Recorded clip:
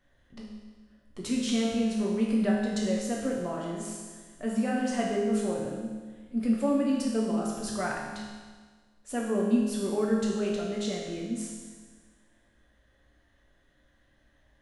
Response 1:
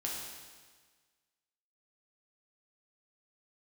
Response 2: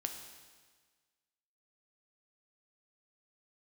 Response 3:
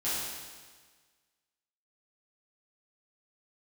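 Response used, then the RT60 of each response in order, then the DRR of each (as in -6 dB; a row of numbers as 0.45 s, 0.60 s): 1; 1.5 s, 1.5 s, 1.5 s; -3.5 dB, 4.5 dB, -12.0 dB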